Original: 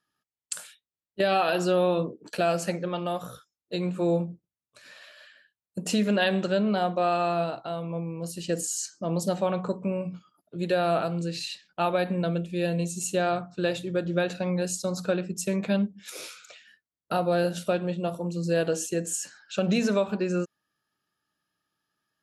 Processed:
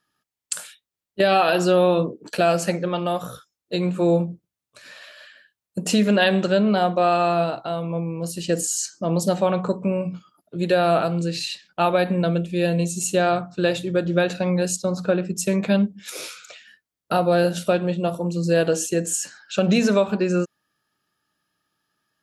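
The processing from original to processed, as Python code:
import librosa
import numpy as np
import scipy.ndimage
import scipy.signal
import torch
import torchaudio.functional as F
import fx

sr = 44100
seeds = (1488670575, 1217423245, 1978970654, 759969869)

y = fx.lowpass(x, sr, hz=2200.0, slope=6, at=(14.76, 15.25))
y = F.gain(torch.from_numpy(y), 6.0).numpy()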